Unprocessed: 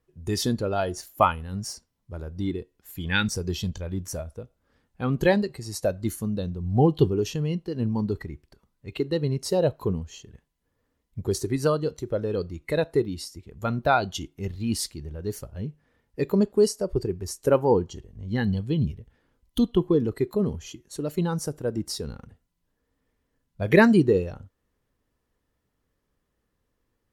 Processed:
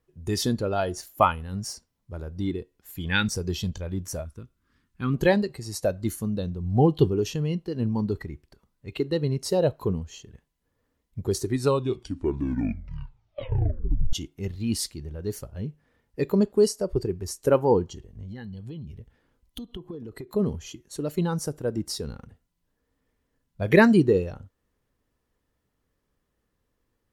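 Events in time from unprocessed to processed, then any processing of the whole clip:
4.25–5.14 band shelf 620 Hz -14.5 dB 1.1 oct
11.45 tape stop 2.68 s
17.89–20.35 compressor 12:1, threshold -34 dBFS

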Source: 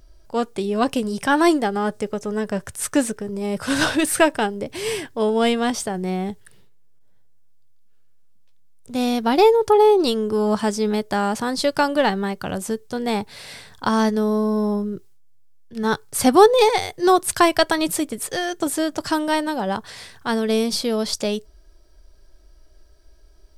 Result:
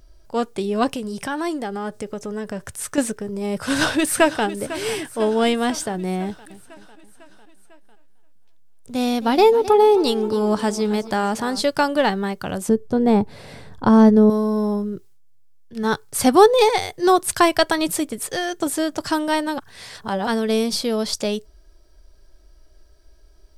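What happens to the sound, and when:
0.92–2.98 compressor 2.5:1, threshold -26 dBFS
3.57–4.45 echo throw 0.5 s, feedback 65%, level -14.5 dB
6.24–11.64 warbling echo 0.264 s, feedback 50%, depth 74 cents, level -16 dB
12.69–14.3 tilt shelf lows +9.5 dB, about 1100 Hz
19.58–20.27 reverse

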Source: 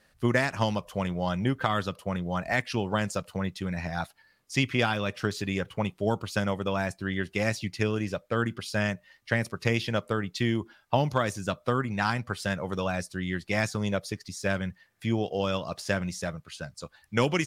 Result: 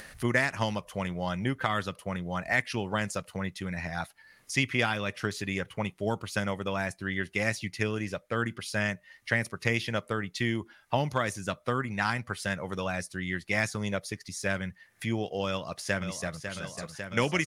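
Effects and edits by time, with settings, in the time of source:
15.46–16.42 echo throw 0.55 s, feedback 85%, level -8.5 dB
whole clip: bell 2000 Hz +3 dB 1.5 oct; upward compressor, threshold -31 dBFS; thirty-one-band EQ 2000 Hz +4 dB, 6300 Hz +3 dB, 10000 Hz +8 dB; gain -3.5 dB

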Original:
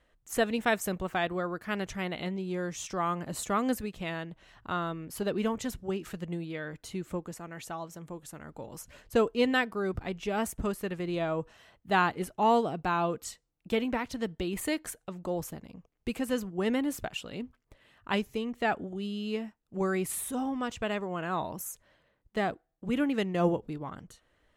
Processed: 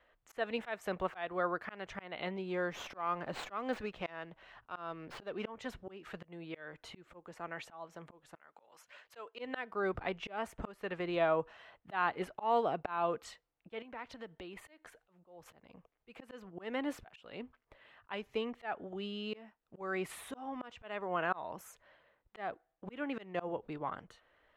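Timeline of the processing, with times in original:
2.72–5.48 running maximum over 3 samples
8.36–9.39 HPF 1400 Hz 6 dB/oct
13.82–15.46 compressor 3:1, threshold -44 dBFS
whole clip: three-band isolator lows -13 dB, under 460 Hz, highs -13 dB, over 4200 Hz; auto swell 0.318 s; high shelf 4400 Hz -9.5 dB; gain +4 dB

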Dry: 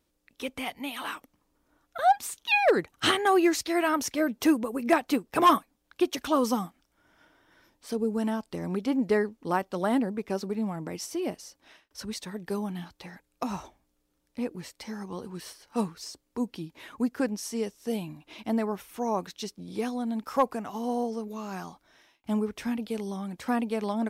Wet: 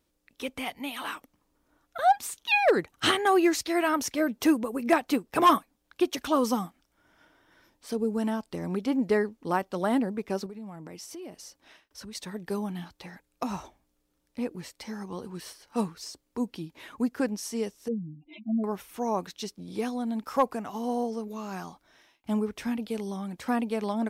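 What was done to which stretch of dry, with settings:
10.46–12.15 compressor 4:1, threshold -40 dBFS
17.88–18.64 spectral contrast raised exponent 3.5

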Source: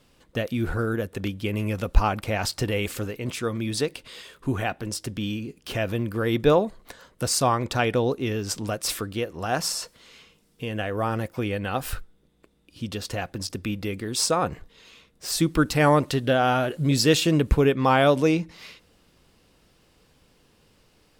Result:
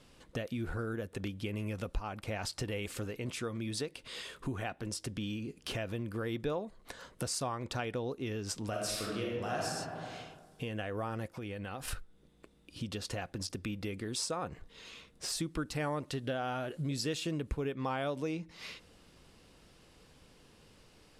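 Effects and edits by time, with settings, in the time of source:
8.69–9.63 reverb throw, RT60 1.3 s, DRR -4.5 dB
11.3–11.88 compressor, threshold -35 dBFS
whole clip: LPF 12000 Hz 24 dB/oct; compressor 3:1, threshold -38 dBFS

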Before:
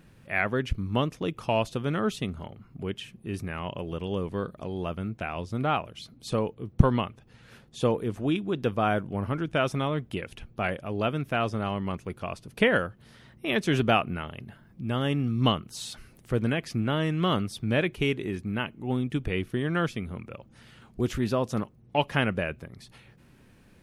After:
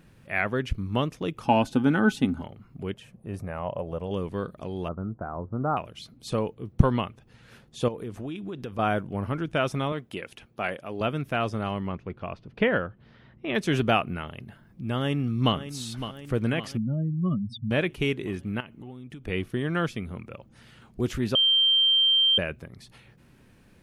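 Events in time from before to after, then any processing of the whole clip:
1.45–2.42 small resonant body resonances 260/820/1500 Hz, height 16 dB, ringing for 65 ms
2.94–4.11 EQ curve 140 Hz 0 dB, 370 Hz -5 dB, 560 Hz +8 dB, 3100 Hz -11 dB, 8800 Hz -5 dB
4.88–5.77 steep low-pass 1400 Hz 48 dB/oct
7.88–8.79 compressor, threshold -31 dBFS
9.92–11.01 HPF 290 Hz 6 dB/oct
11.87–13.55 air absorption 260 m
14.95–15.55 echo throw 0.56 s, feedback 60%, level -11.5 dB
16.77–17.71 spectral contrast raised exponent 3.8
18.6–19.28 compressor 8:1, threshold -38 dBFS
21.35–22.38 bleep 3150 Hz -17.5 dBFS

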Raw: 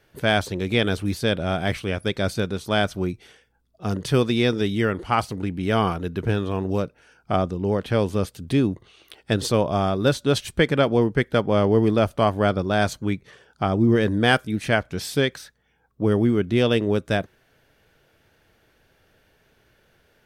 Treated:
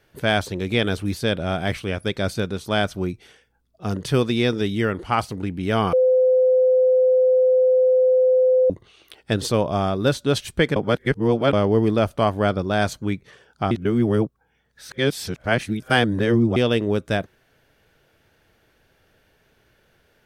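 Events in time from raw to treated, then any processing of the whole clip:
5.93–8.7 bleep 512 Hz -13 dBFS
10.76–11.53 reverse
13.71–16.56 reverse

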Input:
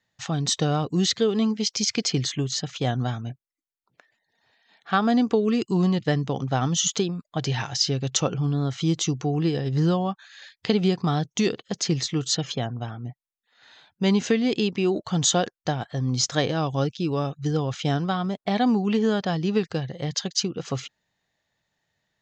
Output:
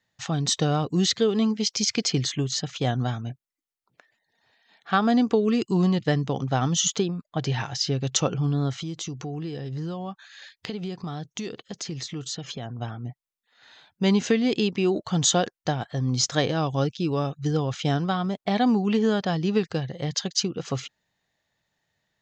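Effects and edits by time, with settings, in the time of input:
6.93–8.02 high shelf 3700 Hz -6 dB
8.78–12.79 compressor 3:1, threshold -32 dBFS

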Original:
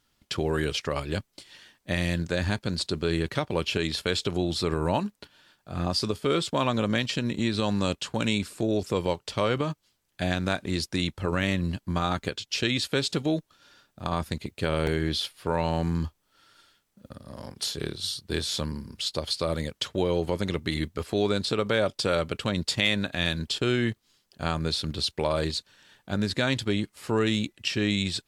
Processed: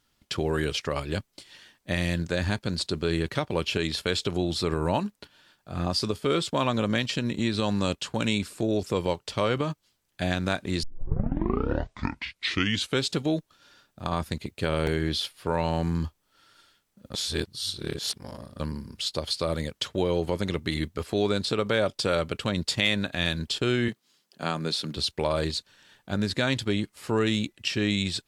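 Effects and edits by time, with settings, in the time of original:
10.83 tape start 2.23 s
17.14–18.6 reverse
23.88–24.97 HPF 150 Hz 24 dB/oct

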